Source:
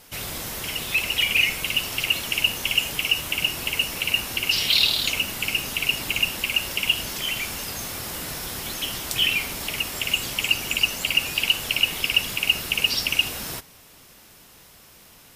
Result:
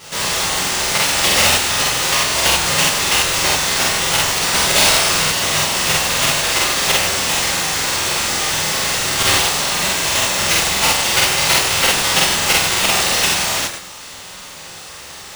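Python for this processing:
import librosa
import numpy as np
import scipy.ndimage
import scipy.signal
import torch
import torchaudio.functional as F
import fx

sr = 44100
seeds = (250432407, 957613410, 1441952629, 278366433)

p1 = fx.spec_clip(x, sr, under_db=29)
p2 = scipy.signal.sosfilt(scipy.signal.butter(4, 580.0, 'highpass', fs=sr, output='sos'), p1)
p3 = fx.over_compress(p2, sr, threshold_db=-35.0, ratio=-1.0)
p4 = p2 + (p3 * librosa.db_to_amplitude(-2.0))
p5 = fx.sample_hold(p4, sr, seeds[0], rate_hz=14000.0, jitter_pct=0)
p6 = fx.doubler(p5, sr, ms=32.0, db=-6)
p7 = fx.rev_gated(p6, sr, seeds[1], gate_ms=220, shape='falling', drr_db=-7.0)
p8 = fx.buffer_crackle(p7, sr, first_s=0.49, period_s=0.11, block=2048, kind='repeat')
y = p8 * librosa.db_to_amplitude(-1.5)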